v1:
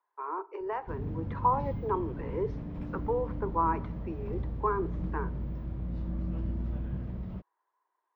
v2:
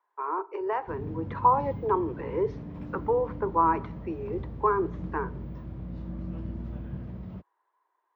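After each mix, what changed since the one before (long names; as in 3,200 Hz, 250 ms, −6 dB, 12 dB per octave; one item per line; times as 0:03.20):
speech +5.0 dB
master: add high-pass filter 70 Hz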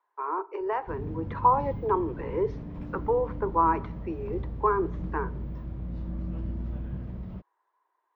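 master: remove high-pass filter 70 Hz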